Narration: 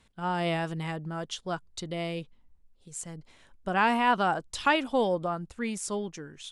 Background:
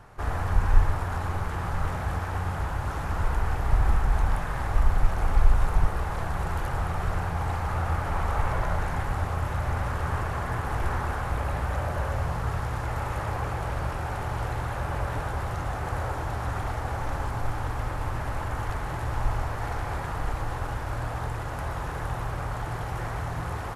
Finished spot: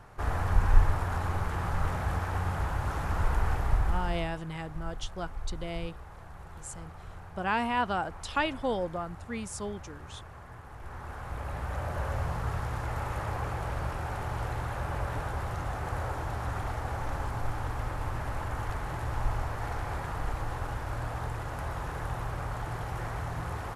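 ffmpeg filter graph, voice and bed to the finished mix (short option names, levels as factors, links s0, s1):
-filter_complex "[0:a]adelay=3700,volume=0.596[s0];[1:a]volume=4.22,afade=t=out:st=3.52:d=0.8:silence=0.158489,afade=t=in:st=10.79:d=1.34:silence=0.199526[s1];[s0][s1]amix=inputs=2:normalize=0"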